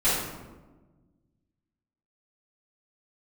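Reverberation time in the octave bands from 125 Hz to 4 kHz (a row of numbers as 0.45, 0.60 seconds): 2.1, 1.9, 1.4, 1.1, 0.85, 0.65 seconds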